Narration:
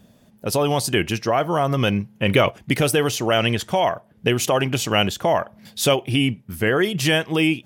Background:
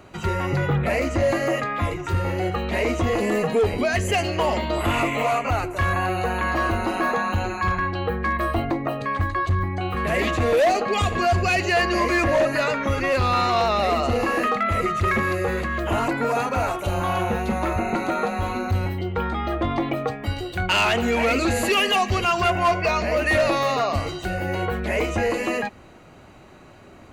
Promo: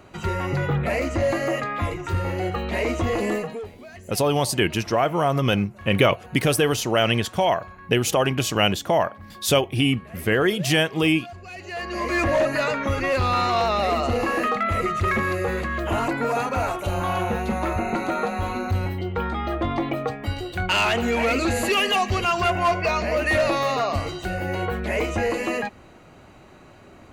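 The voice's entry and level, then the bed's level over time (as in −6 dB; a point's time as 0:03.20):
3.65 s, −1.0 dB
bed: 0:03.32 −1.5 dB
0:03.75 −20.5 dB
0:11.42 −20.5 dB
0:12.21 −1 dB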